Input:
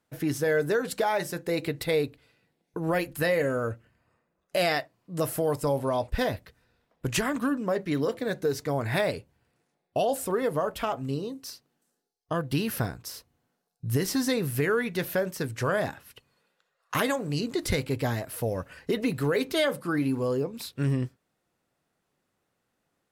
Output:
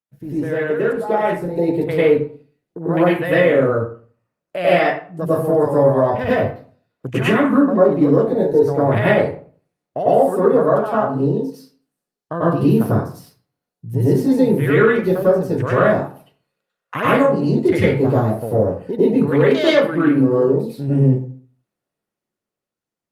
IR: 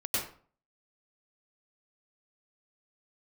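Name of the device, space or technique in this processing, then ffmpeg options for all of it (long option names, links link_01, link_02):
far-field microphone of a smart speaker: -filter_complex "[0:a]afwtdn=0.0251[link_01];[1:a]atrim=start_sample=2205[link_02];[link_01][link_02]afir=irnorm=-1:irlink=0,highpass=frequency=110:width=0.5412,highpass=frequency=110:width=1.3066,dynaudnorm=framelen=250:gausssize=11:maxgain=15dB,volume=-1dB" -ar 48000 -c:a libopus -b:a 48k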